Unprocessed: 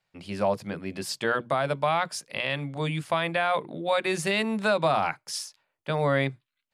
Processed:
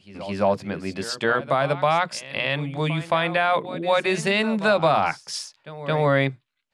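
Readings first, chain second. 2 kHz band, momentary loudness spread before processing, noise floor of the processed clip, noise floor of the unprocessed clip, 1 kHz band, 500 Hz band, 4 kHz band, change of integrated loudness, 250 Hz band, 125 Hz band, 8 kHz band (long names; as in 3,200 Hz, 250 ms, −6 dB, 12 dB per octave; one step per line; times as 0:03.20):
+4.5 dB, 9 LU, −69 dBFS, −83 dBFS, +4.5 dB, +4.5 dB, +4.0 dB, +4.5 dB, +4.5 dB, +4.5 dB, +1.0 dB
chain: Bessel low-pass filter 6,900 Hz, order 2
echo ahead of the sound 219 ms −15 dB
level +4.5 dB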